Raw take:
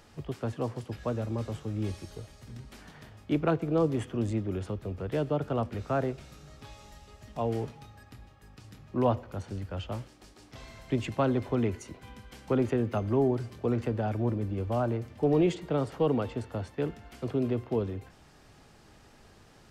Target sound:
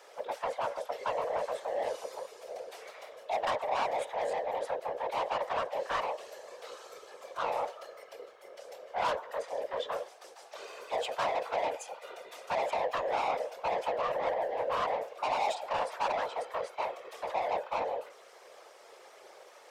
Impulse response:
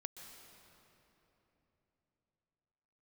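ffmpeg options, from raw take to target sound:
-af "afreqshift=440,asoftclip=type=tanh:threshold=-30dB,afftfilt=real='hypot(re,im)*cos(2*PI*random(0))':imag='hypot(re,im)*sin(2*PI*random(1))':win_size=512:overlap=0.75,volume=8dB"

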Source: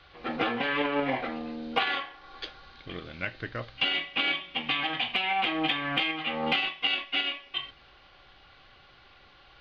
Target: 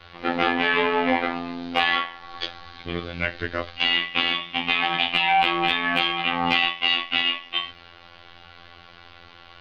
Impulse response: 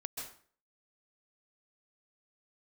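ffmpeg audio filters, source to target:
-af "apsyclip=23.5dB,afftfilt=real='hypot(re,im)*cos(PI*b)':imag='0':win_size=2048:overlap=0.75,volume=-11.5dB"

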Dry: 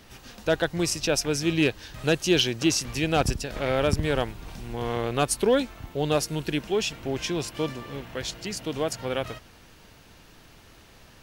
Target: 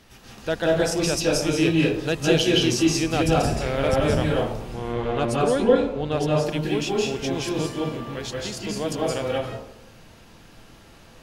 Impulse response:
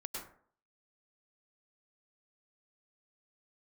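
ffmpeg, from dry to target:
-filter_complex "[0:a]asettb=1/sr,asplit=3[link_01][link_02][link_03];[link_01]atrim=end=4.744[link_04];[link_02]atrim=start=4.74:end=6.45,asetpts=PTS-STARTPTS,afade=type=in:duration=0.004:curve=qsin,afade=type=out:start_time=1.706:duration=0.004:curve=qsin,aemphasis=mode=reproduction:type=50fm[link_05];[link_03]atrim=start=6.446[link_06];[link_04][link_05]acrossfade=duration=0.004:curve1=hsin:curve2=qsin[link_07];[link_07][link_06]acrossfade=duration=0.004:curve1=qsin:curve2=hsin[link_08];[1:a]atrim=start_sample=2205,asetrate=26019,aresample=44100[link_09];[link_08][link_09]afir=irnorm=-1:irlink=0"

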